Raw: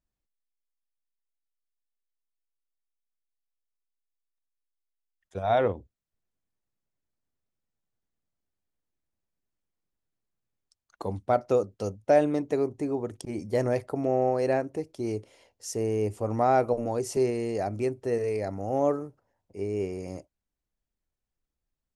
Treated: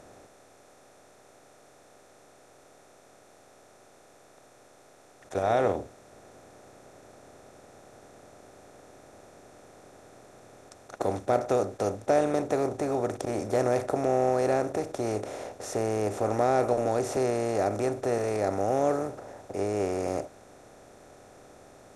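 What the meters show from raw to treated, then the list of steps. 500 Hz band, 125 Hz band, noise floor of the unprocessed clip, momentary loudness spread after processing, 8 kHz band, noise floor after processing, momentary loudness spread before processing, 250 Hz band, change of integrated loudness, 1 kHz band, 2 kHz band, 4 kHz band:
+0.5 dB, -1.0 dB, under -85 dBFS, 9 LU, +3.0 dB, -57 dBFS, 13 LU, -0.5 dB, 0.0 dB, +1.0 dB, +1.5 dB, +2.5 dB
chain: spectral levelling over time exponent 0.4; trim -5.5 dB

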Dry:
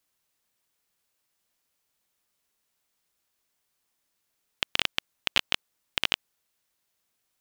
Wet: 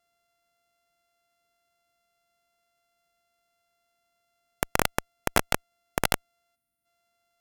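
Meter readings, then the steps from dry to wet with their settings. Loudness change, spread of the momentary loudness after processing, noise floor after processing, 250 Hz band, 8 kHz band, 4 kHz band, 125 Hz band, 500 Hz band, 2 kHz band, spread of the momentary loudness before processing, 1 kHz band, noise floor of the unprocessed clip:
+0.5 dB, 6 LU, -76 dBFS, +12.0 dB, +9.0 dB, -8.0 dB, +13.0 dB, +12.5 dB, +0.5 dB, 5 LU, +9.5 dB, -78 dBFS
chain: sorted samples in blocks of 64 samples; time-frequency box 6.55–6.86 s, 360–8600 Hz -13 dB; Chebyshev shaper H 5 -20 dB, 6 -9 dB, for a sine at -3.5 dBFS; trim -1.5 dB

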